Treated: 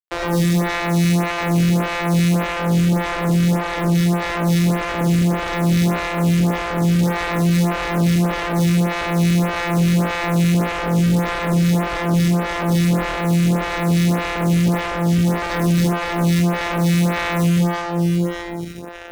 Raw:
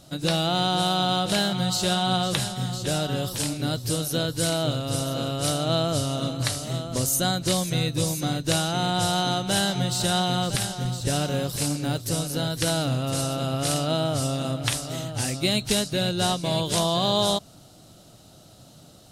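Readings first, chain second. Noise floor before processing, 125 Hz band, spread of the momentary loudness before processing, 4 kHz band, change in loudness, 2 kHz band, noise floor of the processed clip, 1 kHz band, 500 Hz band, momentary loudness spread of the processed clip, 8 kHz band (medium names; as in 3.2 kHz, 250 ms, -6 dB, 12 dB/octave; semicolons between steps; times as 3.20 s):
-50 dBFS, +9.5 dB, 5 LU, -4.0 dB, +6.5 dB, +9.5 dB, -26 dBFS, +4.5 dB, +4.0 dB, 3 LU, -3.5 dB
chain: sorted samples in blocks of 256 samples; treble shelf 10 kHz -5.5 dB; band-stop 430 Hz, Q 13; echo whose repeats swap between lows and highs 174 ms, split 820 Hz, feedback 64%, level -4.5 dB; algorithmic reverb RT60 1.2 s, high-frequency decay 0.3×, pre-delay 25 ms, DRR 2.5 dB; fuzz box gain 33 dB, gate -39 dBFS; lamp-driven phase shifter 1.7 Hz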